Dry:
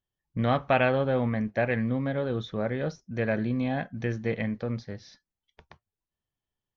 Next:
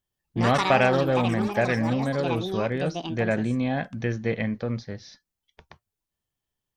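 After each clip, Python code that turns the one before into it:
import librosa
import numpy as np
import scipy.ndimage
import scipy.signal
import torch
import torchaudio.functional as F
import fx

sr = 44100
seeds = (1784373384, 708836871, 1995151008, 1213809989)

y = fx.high_shelf(x, sr, hz=5200.0, db=5.0)
y = fx.echo_pitch(y, sr, ms=115, semitones=7, count=3, db_per_echo=-6.0)
y = F.gain(torch.from_numpy(y), 2.5).numpy()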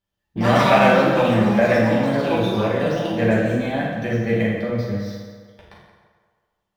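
y = scipy.ndimage.median_filter(x, 5, mode='constant')
y = fx.rev_fdn(y, sr, rt60_s=1.7, lf_ratio=0.75, hf_ratio=0.65, size_ms=30.0, drr_db=-6.5)
y = F.gain(torch.from_numpy(y), -1.0).numpy()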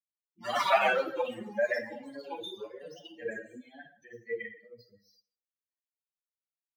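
y = fx.bin_expand(x, sr, power=3.0)
y = scipy.signal.sosfilt(scipy.signal.butter(2, 580.0, 'highpass', fs=sr, output='sos'), y)
y = F.gain(torch.from_numpy(y), -3.0).numpy()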